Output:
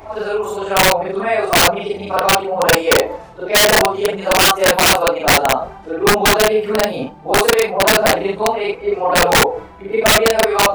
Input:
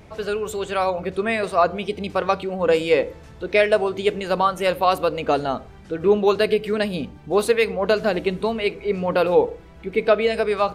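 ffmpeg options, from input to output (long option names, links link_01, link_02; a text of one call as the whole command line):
ffmpeg -i in.wav -af "afftfilt=real='re':imag='-im':win_size=4096:overlap=0.75,equalizer=frequency=820:width=0.92:gain=15,areverse,acompressor=mode=upward:threshold=-20dB:ratio=2.5,areverse,flanger=delay=2.5:depth=7.4:regen=-26:speed=0.66:shape=sinusoidal,aeval=exprs='(mod(3.76*val(0)+1,2)-1)/3.76':channel_layout=same,volume=6dB" out.wav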